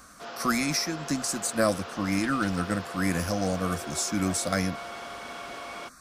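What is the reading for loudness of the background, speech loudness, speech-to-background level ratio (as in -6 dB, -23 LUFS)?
-38.5 LUFS, -28.5 LUFS, 10.0 dB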